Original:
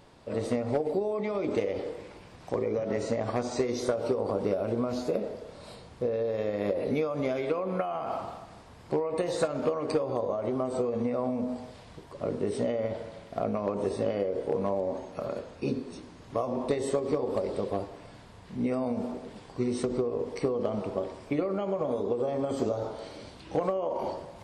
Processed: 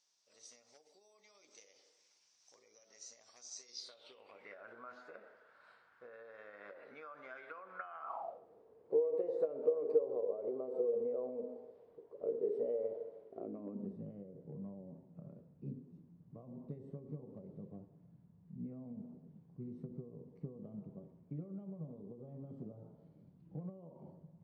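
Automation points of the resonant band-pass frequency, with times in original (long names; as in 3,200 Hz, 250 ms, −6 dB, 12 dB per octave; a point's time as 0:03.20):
resonant band-pass, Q 7.3
0:03.63 5,900 Hz
0:04.70 1,500 Hz
0:08.00 1,500 Hz
0:08.41 450 Hz
0:13.24 450 Hz
0:14.06 160 Hz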